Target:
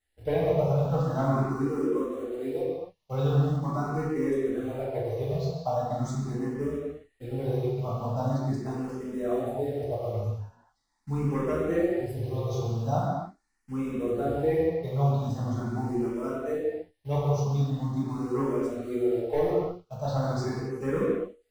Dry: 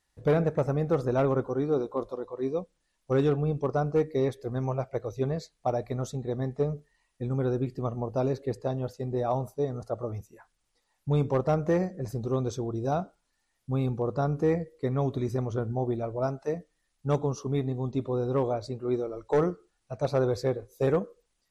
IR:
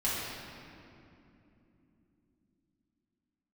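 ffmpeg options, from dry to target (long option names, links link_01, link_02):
-filter_complex "[0:a]asplit=2[link_01][link_02];[link_02]acrusher=bits=6:mix=0:aa=0.000001,volume=-7.5dB[link_03];[link_01][link_03]amix=inputs=2:normalize=0[link_04];[1:a]atrim=start_sample=2205,afade=type=out:start_time=0.35:duration=0.01,atrim=end_sample=15876[link_05];[link_04][link_05]afir=irnorm=-1:irlink=0,asplit=2[link_06][link_07];[link_07]afreqshift=0.42[link_08];[link_06][link_08]amix=inputs=2:normalize=1,volume=-7.5dB"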